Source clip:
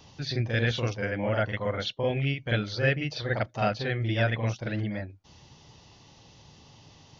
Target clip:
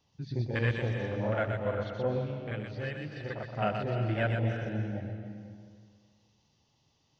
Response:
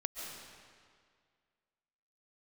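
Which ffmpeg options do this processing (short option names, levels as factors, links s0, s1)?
-filter_complex "[0:a]afwtdn=0.0282,asettb=1/sr,asplit=3[s0][s1][s2];[s0]atrim=end=2.184[s3];[s1]atrim=start=2.18:end=3.47,asetpts=PTS-STARTPTS,afade=t=in:d=0.004:c=qsin,afade=t=out:st=1.286:d=0.004:c=qsin,acompressor=threshold=0.0224:ratio=3[s4];[s2]atrim=start=3.466[s5];[s3][s4]acrossfade=d=0.004:c1=hsin:c2=qsin[s6];[s6][s5]acrossfade=d=0.004:c1=qsin:c2=hsin,asplit=2[s7][s8];[1:a]atrim=start_sample=2205,highshelf=f=3900:g=9,adelay=123[s9];[s8][s9]afir=irnorm=-1:irlink=0,volume=0.562[s10];[s7][s10]amix=inputs=2:normalize=0,volume=0.668"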